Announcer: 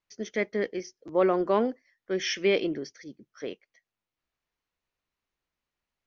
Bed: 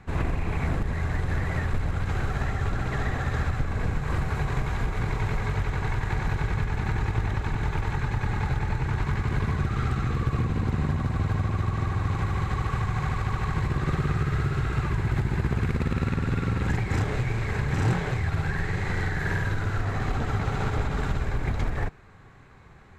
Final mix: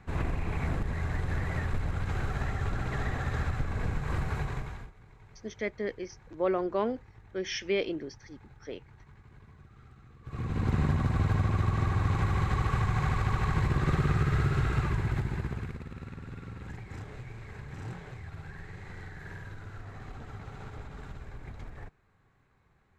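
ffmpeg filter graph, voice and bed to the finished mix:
-filter_complex "[0:a]adelay=5250,volume=-5dB[a];[1:a]volume=22.5dB,afade=t=out:st=4.34:d=0.59:silence=0.0668344,afade=t=in:st=10.23:d=0.5:silence=0.0446684,afade=t=out:st=14.64:d=1.19:silence=0.16788[b];[a][b]amix=inputs=2:normalize=0"

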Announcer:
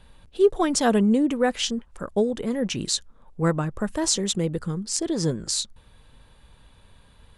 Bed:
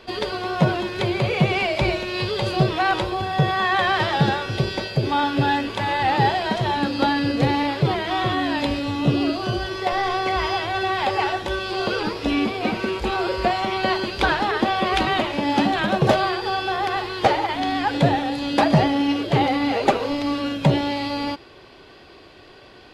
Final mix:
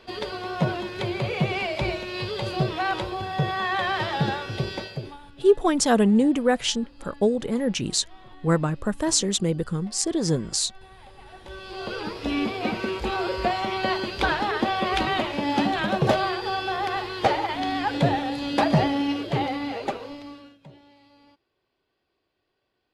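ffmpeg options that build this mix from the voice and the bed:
-filter_complex "[0:a]adelay=5050,volume=1dB[a];[1:a]volume=19dB,afade=t=out:st=4.77:d=0.41:silence=0.0749894,afade=t=in:st=11.25:d=1.25:silence=0.0595662,afade=t=out:st=18.89:d=1.69:silence=0.0446684[b];[a][b]amix=inputs=2:normalize=0"

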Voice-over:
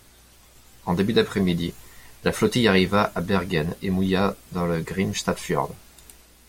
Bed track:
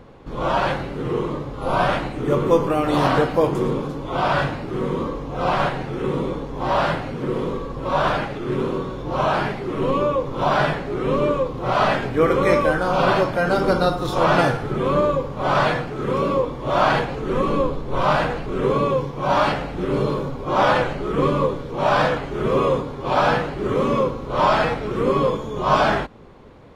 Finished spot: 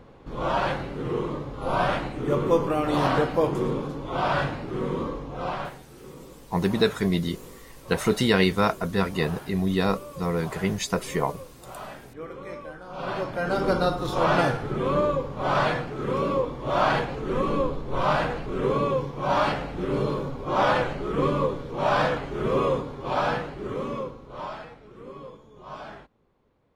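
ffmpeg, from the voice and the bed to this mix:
-filter_complex "[0:a]adelay=5650,volume=-2dB[a];[1:a]volume=12dB,afade=t=out:st=5.13:d=0.7:silence=0.149624,afade=t=in:st=12.88:d=0.82:silence=0.149624,afade=t=out:st=22.65:d=2.01:silence=0.125893[b];[a][b]amix=inputs=2:normalize=0"

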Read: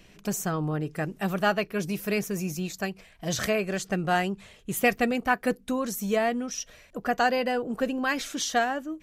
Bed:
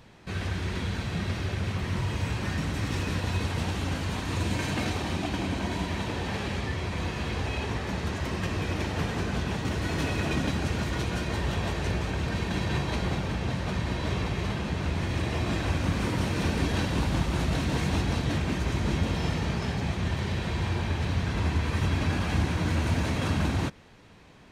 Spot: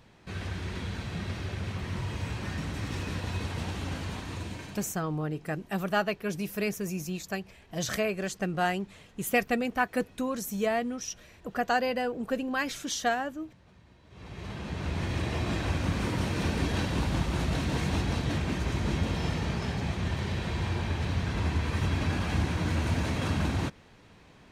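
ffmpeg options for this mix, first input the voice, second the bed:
-filter_complex "[0:a]adelay=4500,volume=-3dB[a];[1:a]volume=21.5dB,afade=t=out:st=4.04:d=0.93:silence=0.0668344,afade=t=in:st=14.1:d=0.93:silence=0.0501187[b];[a][b]amix=inputs=2:normalize=0"

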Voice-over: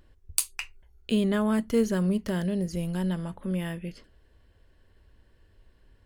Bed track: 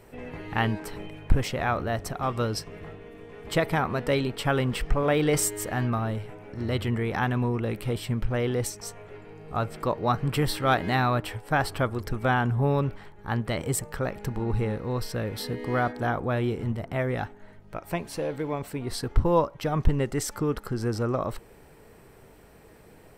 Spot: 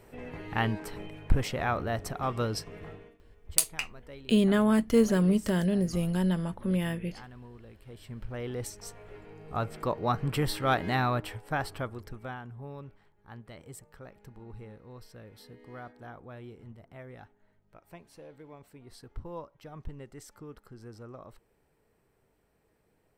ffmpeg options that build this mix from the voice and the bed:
-filter_complex "[0:a]adelay=3200,volume=1.5dB[a];[1:a]volume=16dB,afade=t=out:st=2.95:d=0.23:silence=0.105925,afade=t=in:st=7.83:d=1.47:silence=0.112202,afade=t=out:st=11.05:d=1.37:silence=0.16788[b];[a][b]amix=inputs=2:normalize=0"

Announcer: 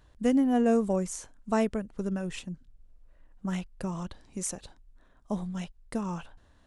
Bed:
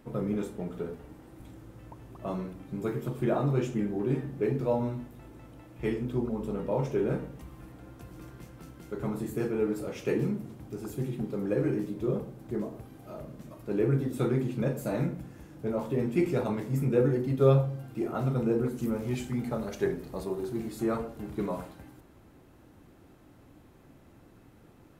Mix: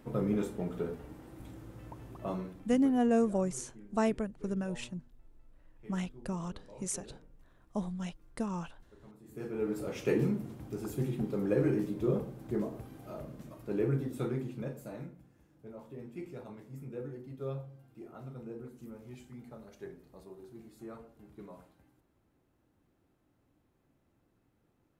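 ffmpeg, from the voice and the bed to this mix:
-filter_complex "[0:a]adelay=2450,volume=-3dB[a];[1:a]volume=22.5dB,afade=t=out:st=2.08:d=0.89:silence=0.0707946,afade=t=in:st=9.23:d=0.74:silence=0.0749894,afade=t=out:st=12.94:d=2.2:silence=0.149624[b];[a][b]amix=inputs=2:normalize=0"

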